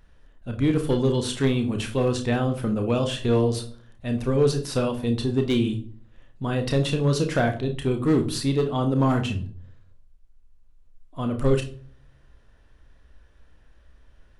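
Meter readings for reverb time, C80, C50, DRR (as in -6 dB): 0.45 s, 17.0 dB, 11.5 dB, 5.0 dB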